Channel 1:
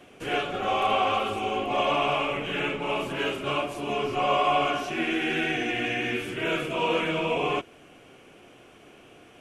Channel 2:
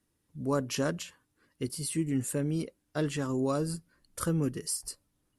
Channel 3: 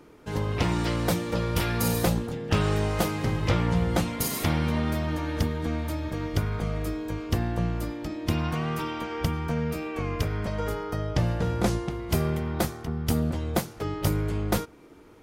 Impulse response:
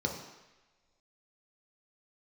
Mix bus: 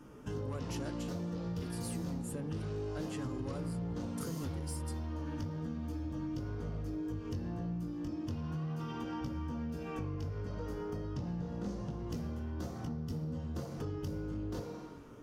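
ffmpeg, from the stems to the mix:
-filter_complex "[1:a]asoftclip=type=tanh:threshold=-25.5dB,volume=-1dB[link_01];[2:a]flanger=delay=16:depth=7.5:speed=0.32,asoftclip=type=tanh:threshold=-26dB,volume=0.5dB,asplit=2[link_02][link_03];[link_03]volume=-8dB[link_04];[link_02]acompressor=threshold=-36dB:ratio=6,volume=0dB[link_05];[3:a]atrim=start_sample=2205[link_06];[link_04][link_06]afir=irnorm=-1:irlink=0[link_07];[link_01][link_05][link_07]amix=inputs=3:normalize=0,acompressor=threshold=-36dB:ratio=6"

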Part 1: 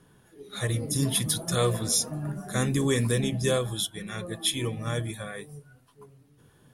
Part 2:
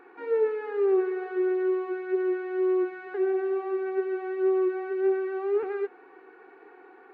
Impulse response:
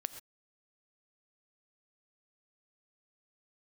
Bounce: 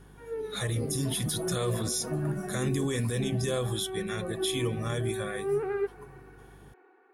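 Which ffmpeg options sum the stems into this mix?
-filter_complex "[0:a]alimiter=limit=-23dB:level=0:latency=1:release=43,aeval=exprs='val(0)+0.00178*(sin(2*PI*50*n/s)+sin(2*PI*2*50*n/s)/2+sin(2*PI*3*50*n/s)/3+sin(2*PI*4*50*n/s)/4+sin(2*PI*5*50*n/s)/5)':channel_layout=same,volume=1.5dB,asplit=2[link_01][link_02];[1:a]dynaudnorm=framelen=250:gausssize=9:maxgain=12dB,volume=-11dB[link_03];[link_02]apad=whole_len=314493[link_04];[link_03][link_04]sidechaincompress=threshold=-41dB:ratio=8:attack=16:release=151[link_05];[link_01][link_05]amix=inputs=2:normalize=0"

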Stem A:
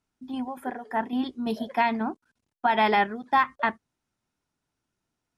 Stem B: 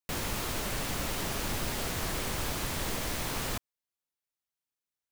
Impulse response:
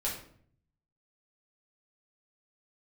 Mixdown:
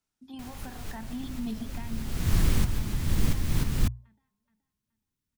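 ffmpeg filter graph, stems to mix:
-filter_complex "[0:a]highshelf=frequency=2900:gain=8.5,bandreject=frequency=50.77:width_type=h:width=4,bandreject=frequency=101.54:width_type=h:width=4,bandreject=frequency=152.31:width_type=h:width=4,bandreject=frequency=203.08:width_type=h:width=4,bandreject=frequency=253.85:width_type=h:width=4,bandreject=frequency=304.62:width_type=h:width=4,bandreject=frequency=355.39:width_type=h:width=4,bandreject=frequency=406.16:width_type=h:width=4,bandreject=frequency=456.93:width_type=h:width=4,bandreject=frequency=507.7:width_type=h:width=4,bandreject=frequency=558.47:width_type=h:width=4,bandreject=frequency=609.24:width_type=h:width=4,bandreject=frequency=660.01:width_type=h:width=4,bandreject=frequency=710.78:width_type=h:width=4,bandreject=frequency=761.55:width_type=h:width=4,bandreject=frequency=812.32:width_type=h:width=4,bandreject=frequency=863.09:width_type=h:width=4,bandreject=frequency=913.86:width_type=h:width=4,bandreject=frequency=964.63:width_type=h:width=4,bandreject=frequency=1015.4:width_type=h:width=4,bandreject=frequency=1066.17:width_type=h:width=4,acrossover=split=190[link_01][link_02];[link_02]acompressor=threshold=-35dB:ratio=4[link_03];[link_01][link_03]amix=inputs=2:normalize=0,volume=-7dB,afade=type=out:start_time=1.54:duration=0.58:silence=0.281838,asplit=3[link_04][link_05][link_06];[link_05]volume=-18.5dB[link_07];[1:a]adelay=300,volume=0.5dB[link_08];[link_06]apad=whole_len=238622[link_09];[link_08][link_09]sidechaincompress=threshold=-53dB:ratio=10:attack=5.7:release=390[link_10];[link_07]aecho=0:1:424|848|1272|1696|2120:1|0.33|0.109|0.0359|0.0119[link_11];[link_04][link_10][link_11]amix=inputs=3:normalize=0,bandreject=frequency=60:width_type=h:width=6,bandreject=frequency=120:width_type=h:width=6,asubboost=boost=10.5:cutoff=210"

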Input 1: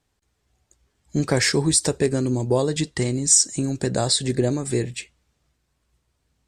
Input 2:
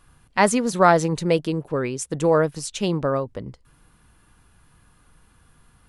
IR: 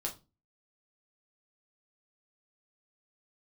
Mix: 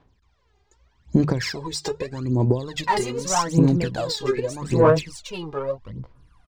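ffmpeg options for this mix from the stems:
-filter_complex "[0:a]lowpass=frequency=6300:width=0.5412,lowpass=frequency=6300:width=1.3066,bandreject=frequency=50:width_type=h:width=6,bandreject=frequency=100:width_type=h:width=6,bandreject=frequency=150:width_type=h:width=6,acompressor=threshold=-28dB:ratio=16,volume=2dB[link_01];[1:a]flanger=delay=15.5:depth=7.1:speed=1.1,asoftclip=type=tanh:threshold=-14.5dB,adelay=2500,volume=-5.5dB[link_02];[link_01][link_02]amix=inputs=2:normalize=0,aphaser=in_gain=1:out_gain=1:delay=2.5:decay=0.78:speed=0.82:type=sinusoidal,adynamicsmooth=sensitivity=7:basefreq=6200,equalizer=frequency=1000:width=5.9:gain=8"

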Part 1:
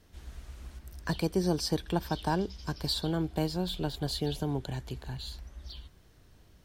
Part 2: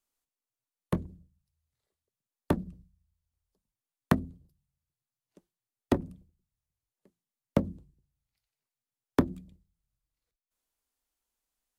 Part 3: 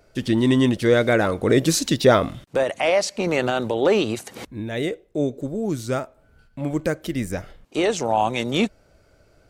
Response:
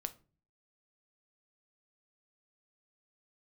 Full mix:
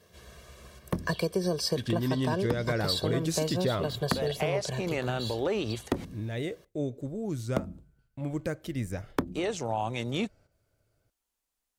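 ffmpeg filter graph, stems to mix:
-filter_complex "[0:a]highpass=230,lowshelf=frequency=340:gain=8,aecho=1:1:1.8:0.88,volume=1.5dB[link_01];[1:a]volume=1dB[link_02];[2:a]agate=range=-10dB:threshold=-45dB:ratio=16:detection=peak,equalizer=frequency=110:width_type=o:width=0.7:gain=9,adelay=1600,volume=-9.5dB[link_03];[link_01][link_02][link_03]amix=inputs=3:normalize=0,acompressor=threshold=-24dB:ratio=6"

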